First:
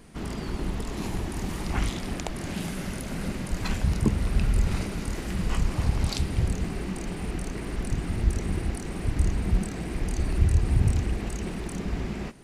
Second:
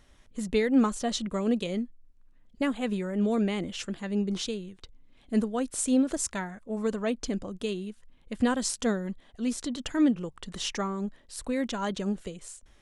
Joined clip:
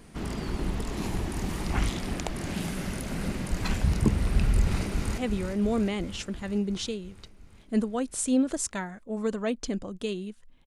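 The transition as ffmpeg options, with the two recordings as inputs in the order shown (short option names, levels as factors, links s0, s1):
-filter_complex "[0:a]apad=whole_dur=10.66,atrim=end=10.66,atrim=end=5.182[s0];[1:a]atrim=start=2.778:end=8.26[s1];[s0][s1]acrossfade=d=0.004:c1=hsin:c2=hsin,asplit=2[s2][s3];[s3]afade=t=in:st=4.59:d=0.01,afade=t=out:st=5.18:d=0.01,aecho=0:1:350|700|1050|1400|1750|2100|2450|2800|3150|3500|3850:0.375837|0.263086|0.18416|0.128912|0.0902386|0.063167|0.0442169|0.0309518|0.0216663|0.0151664|0.0106165[s4];[s2][s4]amix=inputs=2:normalize=0"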